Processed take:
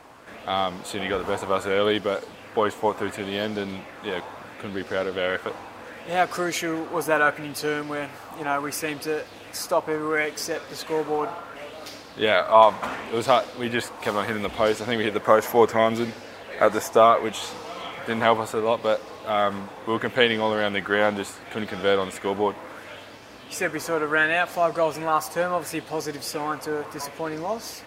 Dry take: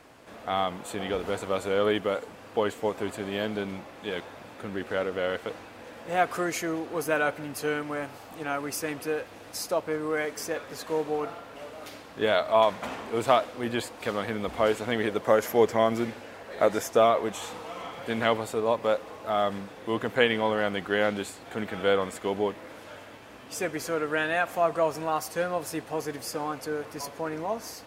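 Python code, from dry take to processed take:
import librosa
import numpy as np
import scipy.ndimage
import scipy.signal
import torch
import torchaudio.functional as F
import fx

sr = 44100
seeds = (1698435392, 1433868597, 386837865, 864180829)

y = fx.high_shelf(x, sr, hz=4200.0, db=6.0, at=(14.04, 14.46))
y = fx.bell_lfo(y, sr, hz=0.71, low_hz=890.0, high_hz=5300.0, db=8)
y = y * 10.0 ** (2.5 / 20.0)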